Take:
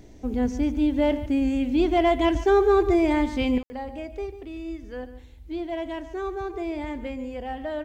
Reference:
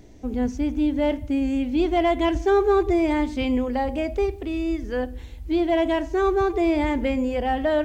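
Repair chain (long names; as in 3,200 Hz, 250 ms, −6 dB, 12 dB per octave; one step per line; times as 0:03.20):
ambience match 0:03.63–0:03.70
echo removal 144 ms −14.5 dB
level correction +9.5 dB, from 0:03.58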